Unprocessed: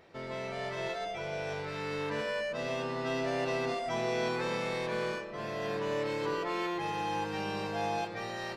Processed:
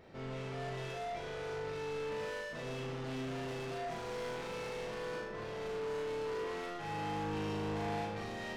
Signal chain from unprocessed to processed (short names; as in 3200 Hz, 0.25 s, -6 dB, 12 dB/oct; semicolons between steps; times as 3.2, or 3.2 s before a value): low shelf 370 Hz +9 dB; soft clip -39 dBFS, distortion -6 dB; flutter echo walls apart 6.6 m, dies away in 0.56 s; gain -3 dB